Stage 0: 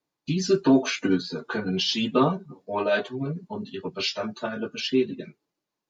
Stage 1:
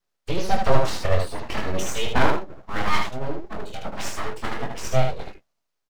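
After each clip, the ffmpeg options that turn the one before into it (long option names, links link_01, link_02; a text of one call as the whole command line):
ffmpeg -i in.wav -filter_complex "[0:a]acrossover=split=3300[link_01][link_02];[link_02]acompressor=threshold=-43dB:ratio=4:attack=1:release=60[link_03];[link_01][link_03]amix=inputs=2:normalize=0,aeval=exprs='abs(val(0))':channel_layout=same,aecho=1:1:23|76:0.473|0.631,volume=2.5dB" out.wav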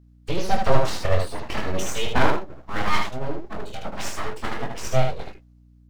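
ffmpeg -i in.wav -af "aeval=exprs='val(0)+0.00282*(sin(2*PI*60*n/s)+sin(2*PI*2*60*n/s)/2+sin(2*PI*3*60*n/s)/3+sin(2*PI*4*60*n/s)/4+sin(2*PI*5*60*n/s)/5)':channel_layout=same" out.wav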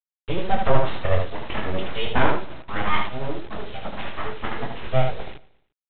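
ffmpeg -i in.wav -af "aresample=8000,acrusher=bits=4:dc=4:mix=0:aa=0.000001,aresample=44100,aecho=1:1:116|232|348:0.0891|0.041|0.0189" out.wav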